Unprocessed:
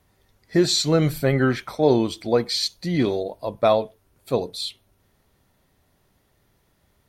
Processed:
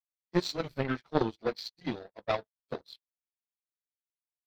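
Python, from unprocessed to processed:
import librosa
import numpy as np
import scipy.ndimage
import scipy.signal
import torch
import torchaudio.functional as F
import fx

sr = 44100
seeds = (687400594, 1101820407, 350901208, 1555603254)

y = fx.stretch_vocoder_free(x, sr, factor=0.63)
y = fx.power_curve(y, sr, exponent=2.0)
y = fx.high_shelf_res(y, sr, hz=6600.0, db=-8.5, q=1.5)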